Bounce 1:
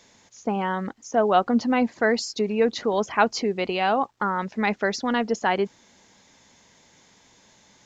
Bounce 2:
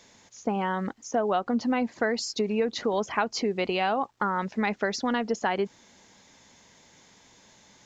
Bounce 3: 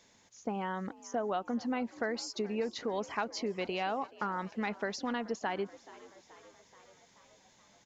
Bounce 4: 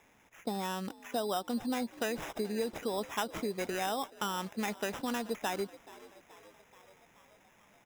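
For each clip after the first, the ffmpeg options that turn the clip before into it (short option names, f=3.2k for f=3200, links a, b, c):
-af "acompressor=threshold=-22dB:ratio=6"
-filter_complex "[0:a]asplit=7[a][b][c][d][e][f][g];[b]adelay=429,afreqshift=60,volume=-20dB[h];[c]adelay=858,afreqshift=120,volume=-23.9dB[i];[d]adelay=1287,afreqshift=180,volume=-27.8dB[j];[e]adelay=1716,afreqshift=240,volume=-31.6dB[k];[f]adelay=2145,afreqshift=300,volume=-35.5dB[l];[g]adelay=2574,afreqshift=360,volume=-39.4dB[m];[a][h][i][j][k][l][m]amix=inputs=7:normalize=0,volume=-8dB"
-af "acrusher=samples=10:mix=1:aa=0.000001"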